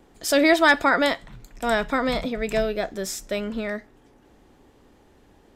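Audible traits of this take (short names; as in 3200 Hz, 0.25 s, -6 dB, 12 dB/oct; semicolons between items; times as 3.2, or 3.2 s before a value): noise floor -56 dBFS; spectral tilt -3.5 dB/oct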